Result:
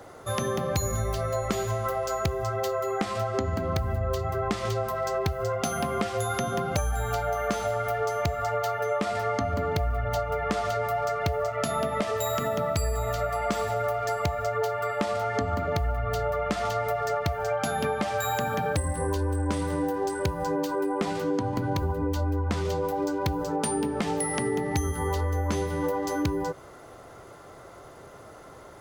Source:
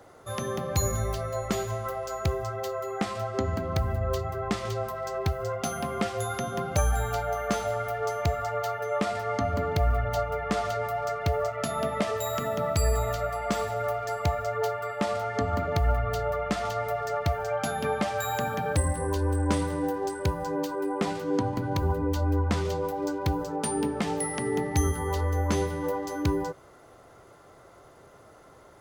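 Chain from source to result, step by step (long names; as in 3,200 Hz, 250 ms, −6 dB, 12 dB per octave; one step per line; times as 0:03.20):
downward compressor, threshold −30 dBFS, peak gain reduction 10.5 dB
level +6 dB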